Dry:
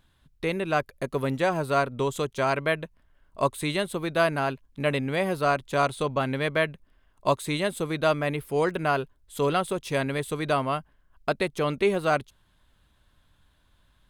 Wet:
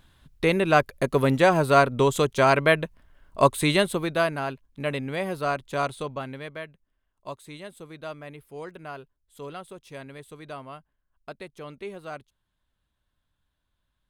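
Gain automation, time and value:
3.81 s +6 dB
4.35 s -3 dB
5.9 s -3 dB
6.68 s -14 dB

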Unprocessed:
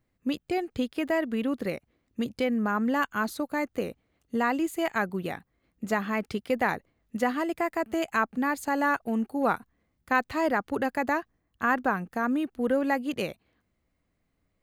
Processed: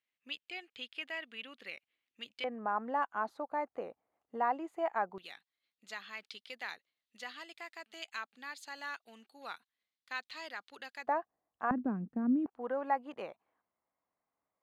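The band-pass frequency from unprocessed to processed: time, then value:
band-pass, Q 2.4
2900 Hz
from 2.44 s 820 Hz
from 5.18 s 3800 Hz
from 11.07 s 760 Hz
from 11.71 s 230 Hz
from 12.46 s 920 Hz

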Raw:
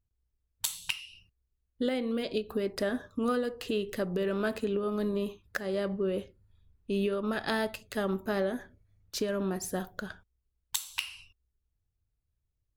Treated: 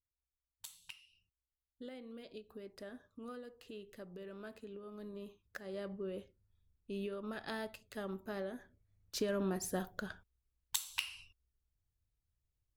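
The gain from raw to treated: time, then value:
4.87 s -18.5 dB
5.8 s -11.5 dB
8.6 s -11.5 dB
9.26 s -4 dB

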